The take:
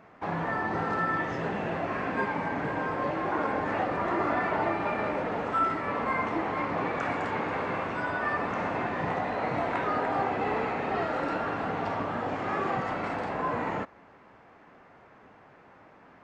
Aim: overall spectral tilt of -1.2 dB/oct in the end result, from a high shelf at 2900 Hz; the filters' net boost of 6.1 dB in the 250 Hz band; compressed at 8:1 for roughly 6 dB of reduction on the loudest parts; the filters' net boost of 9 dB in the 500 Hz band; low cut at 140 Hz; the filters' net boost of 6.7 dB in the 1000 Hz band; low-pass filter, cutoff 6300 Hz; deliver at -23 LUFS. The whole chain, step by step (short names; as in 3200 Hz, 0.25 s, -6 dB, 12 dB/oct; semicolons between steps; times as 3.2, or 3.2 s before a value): HPF 140 Hz; LPF 6300 Hz; bell 250 Hz +5 dB; bell 500 Hz +8.5 dB; bell 1000 Hz +6.5 dB; high shelf 2900 Hz -8 dB; compressor 8:1, threshold -23 dBFS; gain +4.5 dB